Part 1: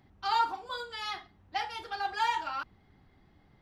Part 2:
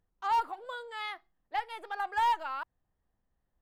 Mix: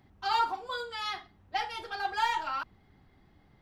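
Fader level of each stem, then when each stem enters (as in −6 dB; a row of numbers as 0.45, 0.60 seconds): +0.5, −4.0 decibels; 0.00, 0.00 seconds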